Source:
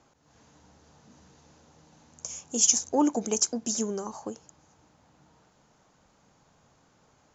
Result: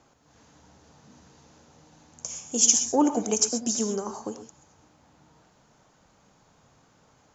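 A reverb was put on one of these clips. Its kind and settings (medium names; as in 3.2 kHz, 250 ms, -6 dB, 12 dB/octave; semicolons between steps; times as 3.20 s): gated-style reverb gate 150 ms rising, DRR 8 dB; trim +2 dB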